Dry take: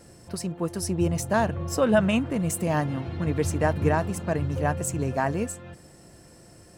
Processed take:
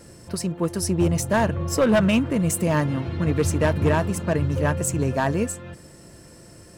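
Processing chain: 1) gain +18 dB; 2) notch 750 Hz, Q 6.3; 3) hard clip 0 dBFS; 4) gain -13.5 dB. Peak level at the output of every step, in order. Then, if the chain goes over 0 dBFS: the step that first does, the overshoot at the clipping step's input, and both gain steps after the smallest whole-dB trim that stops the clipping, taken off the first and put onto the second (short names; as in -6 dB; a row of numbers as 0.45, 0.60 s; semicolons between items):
+8.0, +9.0, 0.0, -13.5 dBFS; step 1, 9.0 dB; step 1 +9 dB, step 4 -4.5 dB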